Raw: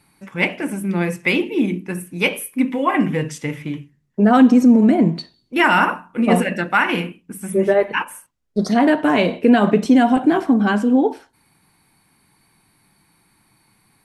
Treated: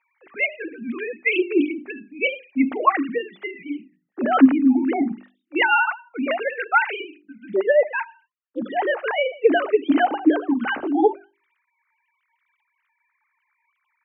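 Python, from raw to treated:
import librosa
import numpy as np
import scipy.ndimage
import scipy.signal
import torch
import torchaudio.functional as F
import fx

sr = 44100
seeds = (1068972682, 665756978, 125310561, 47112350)

y = fx.sine_speech(x, sr)
y = fx.low_shelf(y, sr, hz=330.0, db=-9.0)
y = fx.notch(y, sr, hz=1000.0, q=9.8)
y = fx.wow_flutter(y, sr, seeds[0], rate_hz=2.1, depth_cents=16.0)
y = fx.hum_notches(y, sr, base_hz=50, count=8)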